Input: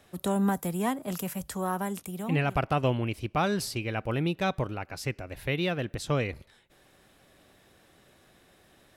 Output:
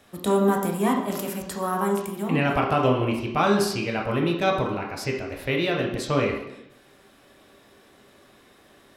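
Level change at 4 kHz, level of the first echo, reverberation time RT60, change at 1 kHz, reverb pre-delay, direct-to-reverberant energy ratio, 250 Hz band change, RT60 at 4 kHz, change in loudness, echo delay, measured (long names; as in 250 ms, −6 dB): +5.0 dB, no echo audible, 0.85 s, +6.5 dB, 12 ms, −1.0 dB, +5.5 dB, 0.75 s, +5.5 dB, no echo audible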